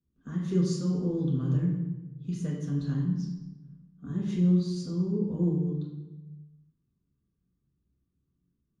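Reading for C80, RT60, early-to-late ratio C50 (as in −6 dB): 4.0 dB, 1.1 s, 2.0 dB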